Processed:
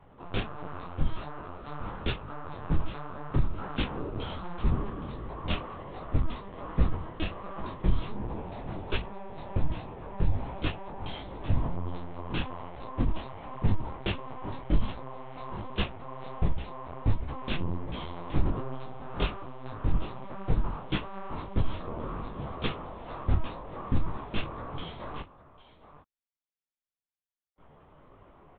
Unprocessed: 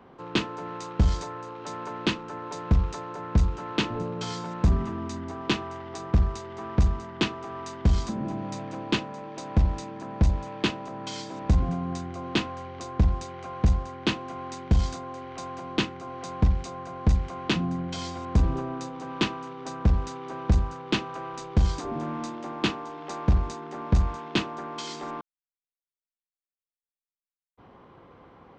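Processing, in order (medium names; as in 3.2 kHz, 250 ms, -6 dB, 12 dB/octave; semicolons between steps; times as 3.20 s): on a send: delay 806 ms -15 dB; on the sum: LPC vocoder at 8 kHz pitch kept; detune thickener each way 46 cents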